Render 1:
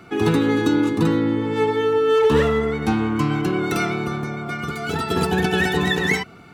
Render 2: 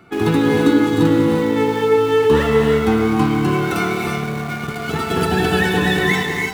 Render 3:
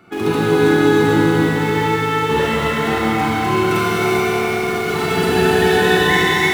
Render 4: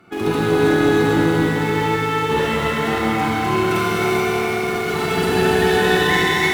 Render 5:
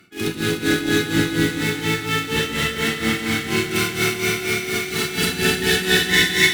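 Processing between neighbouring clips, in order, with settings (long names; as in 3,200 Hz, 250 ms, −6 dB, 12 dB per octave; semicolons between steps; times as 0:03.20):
parametric band 5,800 Hz −4 dB 0.84 octaves; reverb whose tail is shaped and stops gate 370 ms rising, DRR 1 dB; in parallel at −4 dB: centre clipping without the shift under −23.5 dBFS; on the sum: level −3 dB
low-shelf EQ 140 Hz −4.5 dB; in parallel at +2 dB: brickwall limiter −13.5 dBFS, peak gain reduction 9.5 dB; on the sum: four-comb reverb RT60 3.6 s, combs from 31 ms, DRR −6 dB; level −8.5 dB
tube saturation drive 5 dB, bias 0.45
drawn EQ curve 280 Hz 0 dB, 980 Hz −12 dB, 1,600 Hz +3 dB, 5,100 Hz +10 dB; amplitude tremolo 4.2 Hz, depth 84%; delay that swaps between a low-pass and a high-pass 151 ms, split 890 Hz, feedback 83%, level −9 dB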